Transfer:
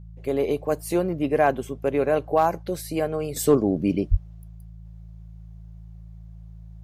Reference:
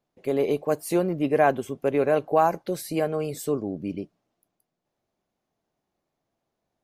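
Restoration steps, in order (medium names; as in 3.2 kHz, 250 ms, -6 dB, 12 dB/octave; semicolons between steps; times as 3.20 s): clip repair -9 dBFS; de-hum 54.8 Hz, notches 3; 4.10–4.22 s: high-pass 140 Hz 24 dB/octave; trim 0 dB, from 3.36 s -8.5 dB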